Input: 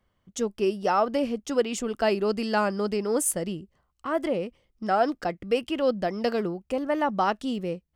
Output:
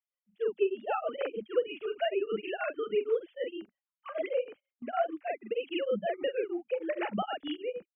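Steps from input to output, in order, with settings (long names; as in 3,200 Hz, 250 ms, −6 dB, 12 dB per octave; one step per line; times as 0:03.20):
three sine waves on the formant tracks
double-tracking delay 43 ms −2.5 dB
downward compressor 5 to 1, threshold −22 dBFS, peak gain reduction 9.5 dB
graphic EQ with 15 bands 250 Hz −9 dB, 1,000 Hz −8 dB, 2,500 Hz +6 dB
noise gate −48 dBFS, range −16 dB
low-shelf EQ 210 Hz +5 dB
tremolo along a rectified sine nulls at 6.4 Hz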